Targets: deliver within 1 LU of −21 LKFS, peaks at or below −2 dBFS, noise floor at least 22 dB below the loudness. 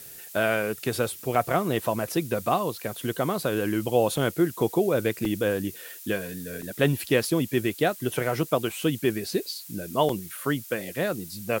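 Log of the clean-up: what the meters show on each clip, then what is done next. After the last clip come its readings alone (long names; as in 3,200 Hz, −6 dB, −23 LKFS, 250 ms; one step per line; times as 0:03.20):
number of dropouts 4; longest dropout 2.9 ms; background noise floor −44 dBFS; target noise floor −49 dBFS; integrated loudness −27.0 LKFS; sample peak −8.0 dBFS; target loudness −21.0 LKFS
→ repair the gap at 0:01.35/0:05.25/0:06.62/0:10.09, 2.9 ms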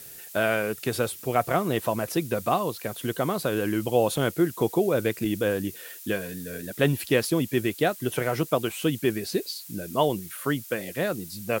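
number of dropouts 0; background noise floor −44 dBFS; target noise floor −49 dBFS
→ noise reduction from a noise print 6 dB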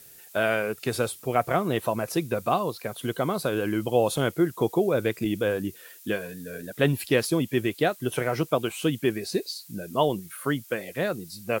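background noise floor −49 dBFS; integrated loudness −27.0 LKFS; sample peak −8.5 dBFS; target loudness −21.0 LKFS
→ level +6 dB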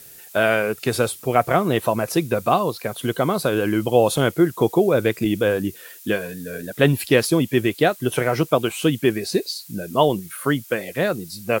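integrated loudness −21.0 LKFS; sample peak −2.5 dBFS; background noise floor −43 dBFS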